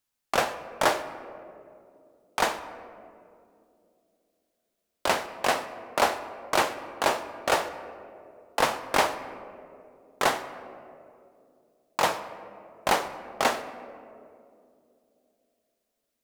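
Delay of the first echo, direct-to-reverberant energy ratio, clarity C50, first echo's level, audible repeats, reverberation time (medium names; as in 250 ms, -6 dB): no echo, 10.0 dB, 12.0 dB, no echo, no echo, 2.6 s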